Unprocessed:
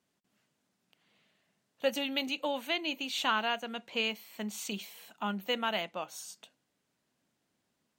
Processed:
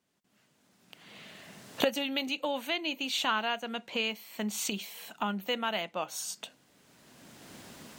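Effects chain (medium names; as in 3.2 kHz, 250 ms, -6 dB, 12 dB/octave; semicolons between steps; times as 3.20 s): recorder AGC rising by 17 dB/s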